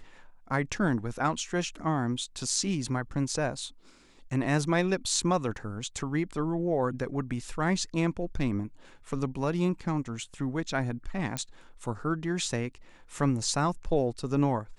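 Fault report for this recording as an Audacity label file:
11.370000	11.370000	pop -16 dBFS

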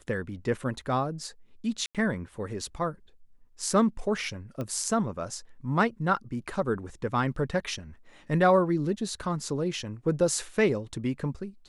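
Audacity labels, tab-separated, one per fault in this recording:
1.860000	1.950000	gap 87 ms
4.610000	4.610000	pop -22 dBFS

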